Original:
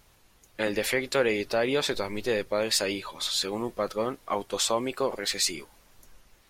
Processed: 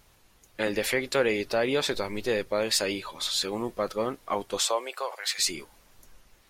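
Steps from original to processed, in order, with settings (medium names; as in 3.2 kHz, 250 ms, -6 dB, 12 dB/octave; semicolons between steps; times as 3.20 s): 4.60–5.38 s: high-pass 350 Hz -> 910 Hz 24 dB/octave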